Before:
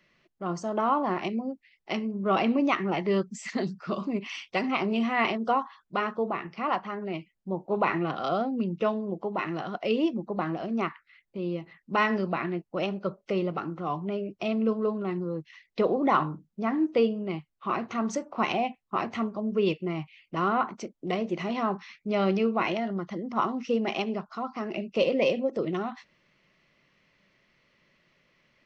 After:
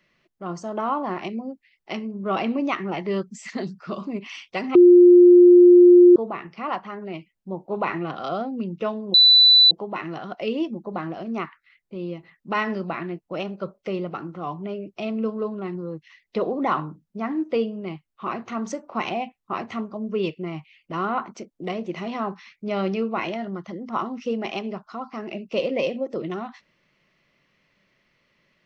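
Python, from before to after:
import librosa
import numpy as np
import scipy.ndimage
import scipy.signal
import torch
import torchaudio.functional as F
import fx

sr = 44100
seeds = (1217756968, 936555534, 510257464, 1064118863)

y = fx.edit(x, sr, fx.bleep(start_s=4.75, length_s=1.41, hz=354.0, db=-7.0),
    fx.insert_tone(at_s=9.14, length_s=0.57, hz=3980.0, db=-9.5), tone=tone)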